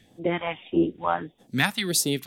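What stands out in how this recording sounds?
phasing stages 2, 1.6 Hz, lowest notch 340–1900 Hz

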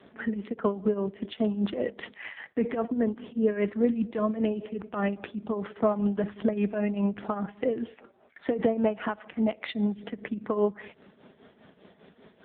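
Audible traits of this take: tremolo triangle 5 Hz, depth 80%; AMR-NB

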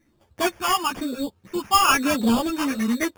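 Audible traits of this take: phasing stages 8, 1 Hz, lowest notch 450–1900 Hz; aliases and images of a low sample rate 4000 Hz, jitter 0%; a shimmering, thickened sound

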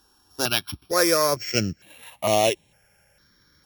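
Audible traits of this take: a buzz of ramps at a fixed pitch in blocks of 8 samples; notches that jump at a steady rate 2.2 Hz 580–5000 Hz

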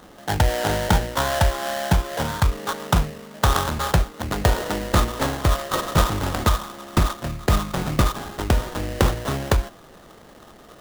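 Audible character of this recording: aliases and images of a low sample rate 2400 Hz, jitter 20%

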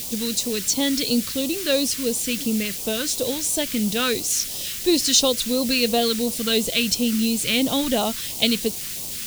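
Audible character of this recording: a quantiser's noise floor 6-bit, dither triangular; phasing stages 2, 2.9 Hz, lowest notch 720–1600 Hz

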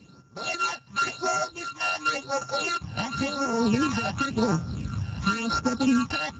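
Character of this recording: a buzz of ramps at a fixed pitch in blocks of 32 samples; phasing stages 12, 0.93 Hz, lowest notch 370–3500 Hz; Speex

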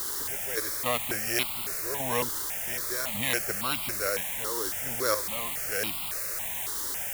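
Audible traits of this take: a buzz of ramps at a fixed pitch in blocks of 8 samples; random-step tremolo, depth 80%; a quantiser's noise floor 6-bit, dither triangular; notches that jump at a steady rate 3.6 Hz 670–1700 Hz

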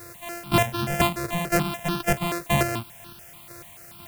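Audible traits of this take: a buzz of ramps at a fixed pitch in blocks of 128 samples; chopped level 2 Hz, depth 60%, duty 25%; a quantiser's noise floor 8-bit, dither triangular; notches that jump at a steady rate 6.9 Hz 840–2100 Hz

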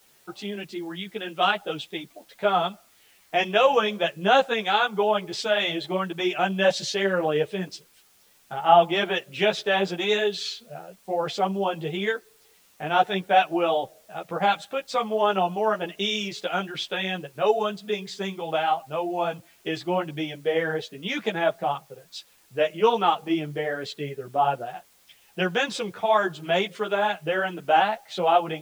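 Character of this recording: a quantiser's noise floor 10-bit, dither triangular; a shimmering, thickened sound

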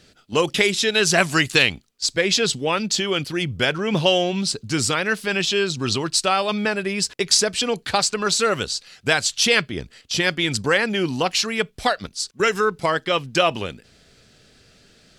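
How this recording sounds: noise floor -55 dBFS; spectral tilt -2.5 dB/oct

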